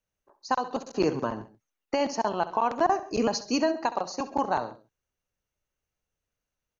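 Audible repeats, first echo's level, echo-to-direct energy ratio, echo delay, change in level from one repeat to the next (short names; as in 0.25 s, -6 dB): 2, -15.0 dB, -13.5 dB, 67 ms, -4.5 dB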